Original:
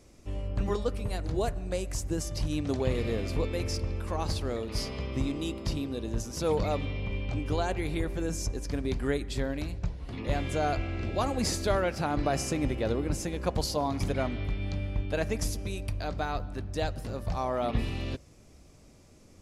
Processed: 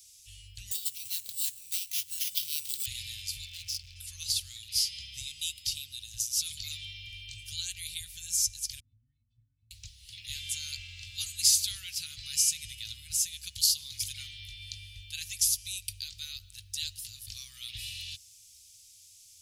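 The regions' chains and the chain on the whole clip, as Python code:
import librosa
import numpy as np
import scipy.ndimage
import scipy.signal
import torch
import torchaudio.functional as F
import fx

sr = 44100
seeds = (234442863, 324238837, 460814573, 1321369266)

y = fx.chain(x, sr, fx.highpass(hz=230.0, slope=12),
    fx.sample_hold(seeds[0], rate_hz=8300.0, jitter_pct=0), at=(0.71, 2.86))
y = fx.chain(y, sr, fx.lowpass(hz=4700.0, slope=12),
    fx.clip_hard(threshold_db=-31.5), at=(3.46, 3.96))
y = fx.chain(y, sr, fx.lowpass_res(hz=240.0, q=2.4),
    fx.low_shelf(hz=170.0, db=-6.5),
    fx.stiff_resonator(f0_hz=110.0, decay_s=0.29, stiffness=0.03), at=(8.8, 9.71))
y = scipy.signal.sosfilt(scipy.signal.cheby1(3, 1.0, [100.0, 3100.0], 'bandstop', fs=sr, output='sos'), y)
y = fx.tilt_eq(y, sr, slope=4.5)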